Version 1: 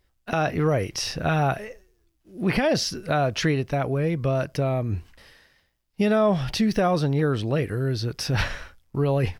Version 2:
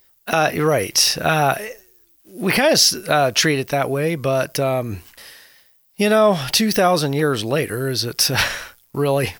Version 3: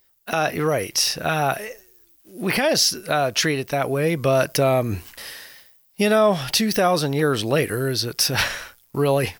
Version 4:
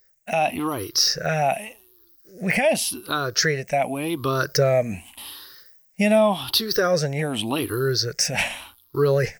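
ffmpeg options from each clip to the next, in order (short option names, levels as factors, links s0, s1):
-af "aemphasis=mode=production:type=bsi,volume=2.37"
-af "dynaudnorm=f=190:g=5:m=5.31,volume=0.531"
-af "afftfilt=real='re*pow(10,17/40*sin(2*PI*(0.56*log(max(b,1)*sr/1024/100)/log(2)-(0.87)*(pts-256)/sr)))':imag='im*pow(10,17/40*sin(2*PI*(0.56*log(max(b,1)*sr/1024/100)/log(2)-(0.87)*(pts-256)/sr)))':win_size=1024:overlap=0.75,volume=0.562"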